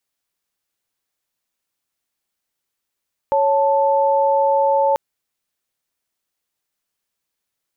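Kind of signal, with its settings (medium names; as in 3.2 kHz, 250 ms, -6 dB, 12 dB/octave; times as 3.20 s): chord C#5/A5 sine, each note -16 dBFS 1.64 s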